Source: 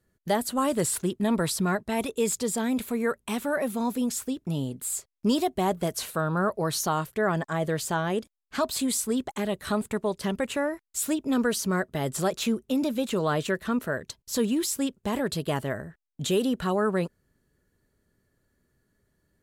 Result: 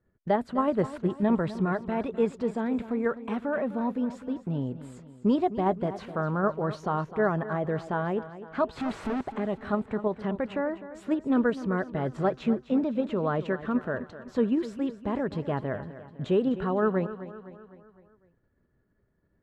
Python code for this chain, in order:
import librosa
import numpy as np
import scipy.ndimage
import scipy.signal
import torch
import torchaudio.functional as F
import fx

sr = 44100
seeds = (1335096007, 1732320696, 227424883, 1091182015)

p1 = fx.clip_1bit(x, sr, at=(8.77, 9.21))
p2 = scipy.signal.sosfilt(scipy.signal.butter(2, 1600.0, 'lowpass', fs=sr, output='sos'), p1)
p3 = fx.level_steps(p2, sr, step_db=12)
p4 = p2 + (p3 * librosa.db_to_amplitude(-1.5))
p5 = fx.echo_feedback(p4, sr, ms=254, feedback_pct=51, wet_db=-14)
y = p5 * librosa.db_to_amplitude(-3.5)